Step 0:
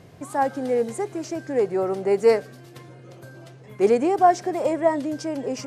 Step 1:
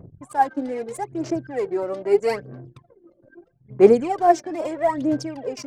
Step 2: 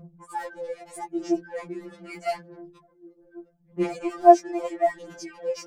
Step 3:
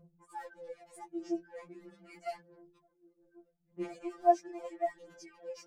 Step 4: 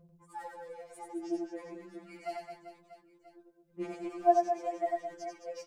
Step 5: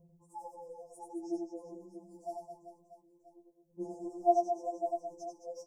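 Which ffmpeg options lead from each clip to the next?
-af "aphaser=in_gain=1:out_gain=1:delay=3.5:decay=0.71:speed=0.78:type=sinusoidal,anlmdn=3.98,volume=0.668"
-af "afftfilt=real='re*2.83*eq(mod(b,8),0)':imag='im*2.83*eq(mod(b,8),0)':win_size=2048:overlap=0.75,volume=0.891"
-af "flanger=delay=2:depth=7:regen=52:speed=0.39:shape=sinusoidal,volume=0.355"
-af "aecho=1:1:90|216|392.4|639.4|985.1:0.631|0.398|0.251|0.158|0.1"
-af "asuperstop=centerf=2300:order=20:qfactor=0.53,volume=0.794"

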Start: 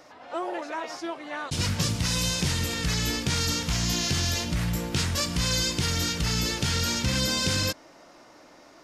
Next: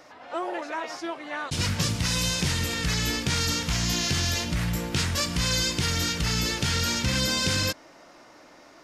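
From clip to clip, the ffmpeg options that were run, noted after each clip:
-af "equalizer=f=1900:t=o:w=1.5:g=2.5"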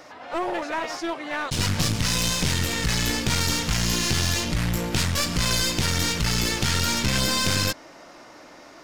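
-af "aeval=exprs='clip(val(0),-1,0.0224)':c=same,volume=1.78"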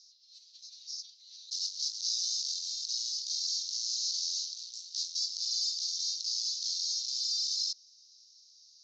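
-af "aeval=exprs='(tanh(11.2*val(0)+0.35)-tanh(0.35))/11.2':c=same,asuperpass=centerf=5100:order=8:qfactor=2.1"

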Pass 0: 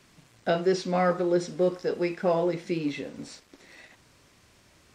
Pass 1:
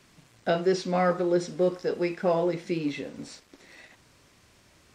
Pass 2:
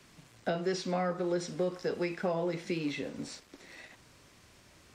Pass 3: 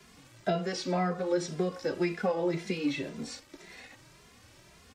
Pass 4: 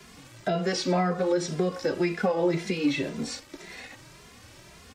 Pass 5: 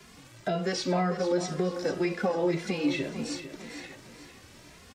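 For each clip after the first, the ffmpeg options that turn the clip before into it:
-af anull
-filter_complex "[0:a]acrossover=split=240|630[s0][s1][s2];[s0]acompressor=threshold=0.0126:ratio=4[s3];[s1]acompressor=threshold=0.0158:ratio=4[s4];[s2]acompressor=threshold=0.0158:ratio=4[s5];[s3][s4][s5]amix=inputs=3:normalize=0"
-filter_complex "[0:a]asplit=2[s0][s1];[s1]adelay=2.5,afreqshift=1.9[s2];[s0][s2]amix=inputs=2:normalize=1,volume=1.88"
-af "alimiter=limit=0.0794:level=0:latency=1:release=180,volume=2.11"
-af "aecho=1:1:450|900|1350|1800:0.266|0.109|0.0447|0.0183,volume=0.75"

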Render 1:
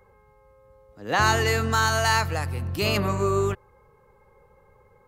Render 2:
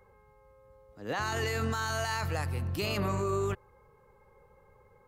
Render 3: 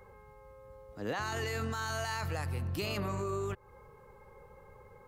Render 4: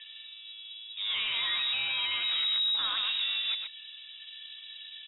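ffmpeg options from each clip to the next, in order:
-af "alimiter=limit=0.112:level=0:latency=1:release=14,volume=0.668"
-af "acompressor=threshold=0.0126:ratio=6,volume=1.88"
-af "asoftclip=type=tanh:threshold=0.0158,aecho=1:1:124:0.531,lowpass=f=3300:t=q:w=0.5098,lowpass=f=3300:t=q:w=0.6013,lowpass=f=3300:t=q:w=0.9,lowpass=f=3300:t=q:w=2.563,afreqshift=-3900,volume=2.51"

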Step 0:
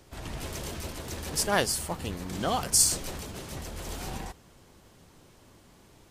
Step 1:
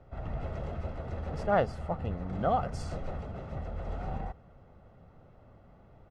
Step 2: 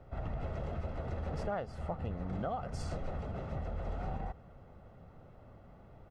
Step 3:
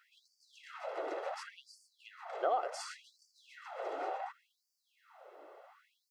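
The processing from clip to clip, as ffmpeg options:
-af "lowpass=1200,aecho=1:1:1.5:0.52"
-af "acompressor=threshold=0.02:ratio=10,volume=1.12"
-af "afftfilt=real='re*gte(b*sr/1024,290*pow(4500/290,0.5+0.5*sin(2*PI*0.69*pts/sr)))':imag='im*gte(b*sr/1024,290*pow(4500/290,0.5+0.5*sin(2*PI*0.69*pts/sr)))':win_size=1024:overlap=0.75,volume=2"

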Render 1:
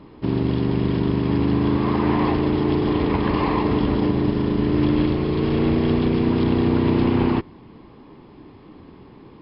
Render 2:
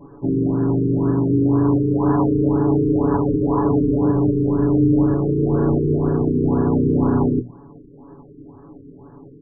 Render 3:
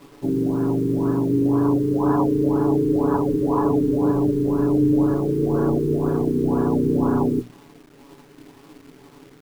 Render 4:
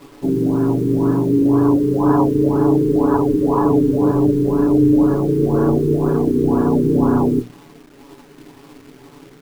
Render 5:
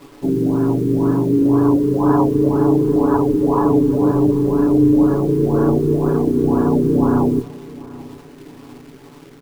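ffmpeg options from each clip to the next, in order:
-af "bandreject=f=60:t=h:w=6,bandreject=f=120:t=h:w=6,bandreject=f=180:t=h:w=6,bandreject=f=240:t=h:w=6,aecho=1:1:7.1:0.87,afftfilt=real='re*lt(b*sr/1024,470*pow(1800/470,0.5+0.5*sin(2*PI*2*pts/sr)))':imag='im*lt(b*sr/1024,470*pow(1800/470,0.5+0.5*sin(2*PI*2*pts/sr)))':win_size=1024:overlap=0.75"
-af "equalizer=f=64:t=o:w=2.4:g=-9,acrusher=bits=7:mix=0:aa=0.000001,aeval=exprs='sgn(val(0))*max(abs(val(0))-0.00299,0)':c=same"
-af "flanger=delay=2.2:depth=7:regen=-61:speed=0.62:shape=triangular,volume=2.66"
-af "aecho=1:1:783|1566|2349:0.1|0.042|0.0176"

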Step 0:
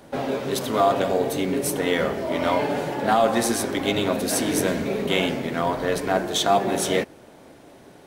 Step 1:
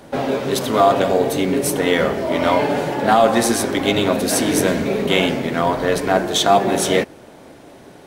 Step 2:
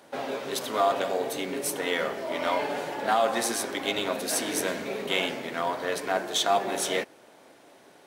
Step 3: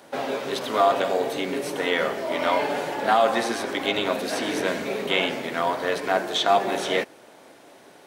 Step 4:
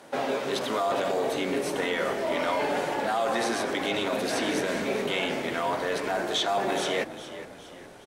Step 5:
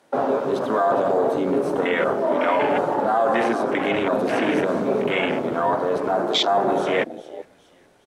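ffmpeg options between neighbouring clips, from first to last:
-af "highshelf=f=12000:g=-3,volume=1.88"
-af "aeval=exprs='0.891*(cos(1*acos(clip(val(0)/0.891,-1,1)))-cos(1*PI/2))+0.0178*(cos(4*acos(clip(val(0)/0.891,-1,1)))-cos(4*PI/2))+0.00562*(cos(8*acos(clip(val(0)/0.891,-1,1)))-cos(8*PI/2))':c=same,highpass=f=620:p=1,volume=0.422"
-filter_complex "[0:a]acrossover=split=4500[s0][s1];[s1]acompressor=threshold=0.00501:ratio=4:attack=1:release=60[s2];[s0][s2]amix=inputs=2:normalize=0,volume=1.68"
-filter_complex "[0:a]acrossover=split=4600[s0][s1];[s0]alimiter=limit=0.112:level=0:latency=1:release=11[s2];[s1]bandpass=f=7400:t=q:w=0.62:csg=0[s3];[s2][s3]amix=inputs=2:normalize=0,asplit=5[s4][s5][s6][s7][s8];[s5]adelay=413,afreqshift=-56,volume=0.2[s9];[s6]adelay=826,afreqshift=-112,volume=0.0923[s10];[s7]adelay=1239,afreqshift=-168,volume=0.0422[s11];[s8]adelay=1652,afreqshift=-224,volume=0.0195[s12];[s4][s9][s10][s11][s12]amix=inputs=5:normalize=0"
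-af "afwtdn=0.0316,volume=2.37"

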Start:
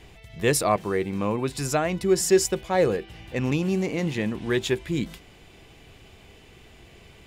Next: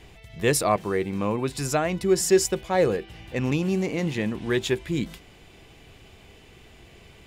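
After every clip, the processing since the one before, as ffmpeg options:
-af anull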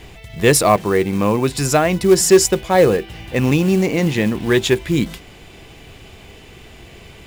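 -af "acontrast=75,acrusher=bits=6:mode=log:mix=0:aa=0.000001,volume=1.33"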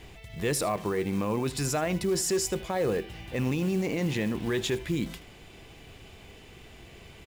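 -af "alimiter=limit=0.251:level=0:latency=1:release=19,aecho=1:1:78:0.126,volume=0.376"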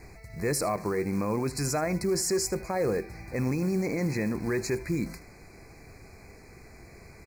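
-af "asuperstop=centerf=3200:order=20:qfactor=2.1"

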